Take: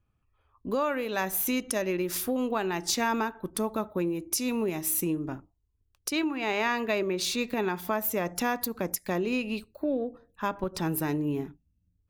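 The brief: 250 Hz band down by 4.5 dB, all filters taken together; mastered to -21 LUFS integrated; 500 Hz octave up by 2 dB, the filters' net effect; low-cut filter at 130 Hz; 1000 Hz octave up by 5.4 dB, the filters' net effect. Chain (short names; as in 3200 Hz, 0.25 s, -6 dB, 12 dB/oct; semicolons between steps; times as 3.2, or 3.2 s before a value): HPF 130 Hz; bell 250 Hz -7 dB; bell 500 Hz +3 dB; bell 1000 Hz +6 dB; gain +7.5 dB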